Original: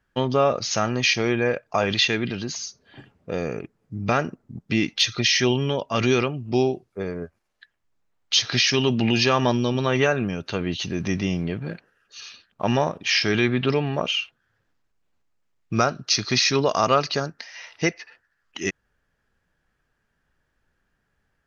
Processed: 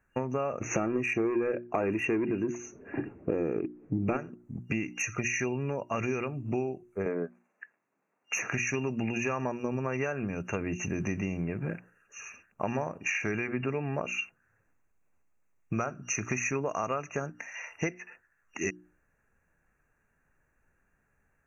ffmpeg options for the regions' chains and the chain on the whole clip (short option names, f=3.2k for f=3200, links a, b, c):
-filter_complex "[0:a]asettb=1/sr,asplit=3[a][b][c];[a]atrim=end=0.614[d];[b]atrim=start=0.61:end=4.17,asetpts=PTS-STARTPTS,afade=t=in:d=0.004:c=qsin,afade=t=out:st=3.556:d=0.004:c=qsin,lowpass=3.3k,equalizer=f=330:t=o:w=0.89:g=15,acontrast=88[e];[c]atrim=start=4.166[f];[d][e]acrossfade=d=0.004:c1=hsin:c2=qsin[g];[g][f]acrossfade=d=0.004:c1=qsin:c2=hsin,asettb=1/sr,asplit=3[h][i][j];[h]atrim=end=7.064[k];[i]atrim=start=7.06:end=8.48,asetpts=PTS-STARTPTS,afade=t=in:d=0.004:c=qsin,afade=t=out:st=1.416:d=0.004:c=qsin,highpass=f=190:w=0.5412,highpass=f=190:w=1.3066,aemphasis=mode=reproduction:type=75fm,acontrast=55[l];[j]atrim=start=8.476[m];[k][l]acrossfade=d=0.004:c1=hsin:c2=qsin[n];[n][m]acrossfade=d=0.004:c1=qsin:c2=hsin,bandreject=f=60:t=h:w=6,bandreject=f=120:t=h:w=6,bandreject=f=180:t=h:w=6,bandreject=f=240:t=h:w=6,bandreject=f=300:t=h:w=6,bandreject=f=360:t=h:w=6,afftfilt=real='re*(1-between(b*sr/4096,2800,5800))':imag='im*(1-between(b*sr/4096,2800,5800))':win_size=4096:overlap=0.75,acompressor=threshold=-28dB:ratio=6"